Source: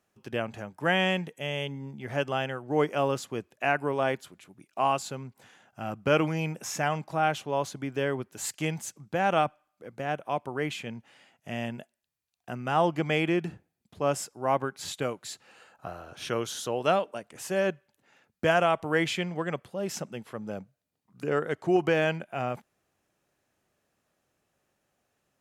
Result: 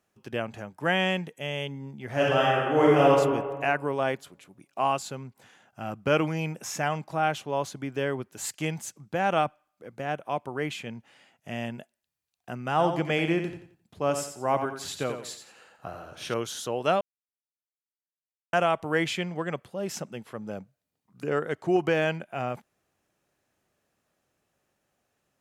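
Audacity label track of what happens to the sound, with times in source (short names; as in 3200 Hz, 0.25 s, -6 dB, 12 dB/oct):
2.120000	3.100000	reverb throw, RT60 1.5 s, DRR -6.5 dB
12.700000	16.340000	feedback echo 88 ms, feedback 32%, level -8 dB
17.010000	18.530000	mute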